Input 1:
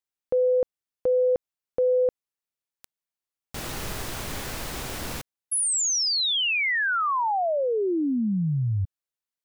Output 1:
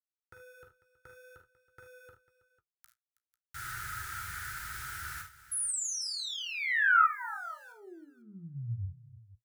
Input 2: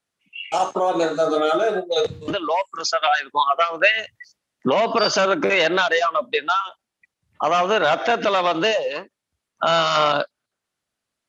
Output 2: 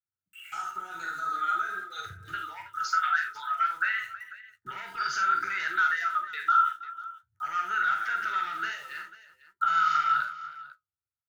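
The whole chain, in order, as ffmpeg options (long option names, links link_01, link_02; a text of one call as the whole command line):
ffmpeg -i in.wav -filter_complex "[0:a]highpass=51,acrossover=split=840[link_01][link_02];[link_02]aeval=exprs='val(0)*gte(abs(val(0)),0.0075)':channel_layout=same[link_03];[link_01][link_03]amix=inputs=2:normalize=0,acompressor=threshold=-24dB:ratio=2.5:attack=5.6:release=26:knee=6,firequalizer=gain_entry='entry(110,0);entry(250,-27);entry(350,-13);entry(540,-30);entry(1300,14);entry(2600,-5);entry(9200,2)':delay=0.05:min_phase=1,flanger=delay=7.9:depth=8.9:regen=-46:speed=0.53:shape=triangular,asuperstop=centerf=1100:order=12:qfactor=4.6,asplit=2[link_04][link_05];[link_05]aecho=0:1:42|52|76|323|496:0.398|0.335|0.251|0.126|0.133[link_06];[link_04][link_06]amix=inputs=2:normalize=0,volume=-5.5dB" out.wav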